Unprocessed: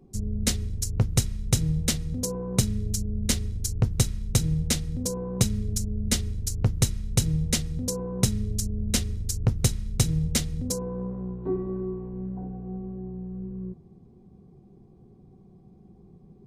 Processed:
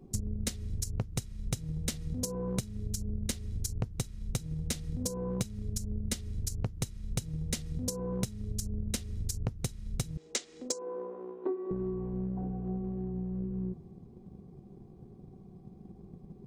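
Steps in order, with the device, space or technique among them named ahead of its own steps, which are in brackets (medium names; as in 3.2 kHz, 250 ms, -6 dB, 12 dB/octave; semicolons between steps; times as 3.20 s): 10.17–11.71 s: elliptic band-pass 330–7600 Hz, stop band 40 dB; drum-bus smash (transient shaper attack +8 dB, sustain +2 dB; compression 16:1, threshold -29 dBFS, peak gain reduction 21.5 dB; saturation -17 dBFS, distortion -25 dB)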